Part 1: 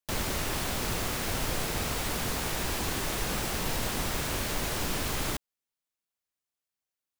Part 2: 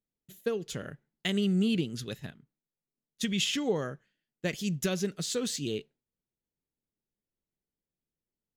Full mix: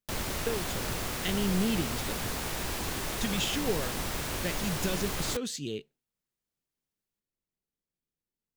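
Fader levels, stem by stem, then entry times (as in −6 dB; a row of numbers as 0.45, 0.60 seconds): −2.5, −2.5 decibels; 0.00, 0.00 seconds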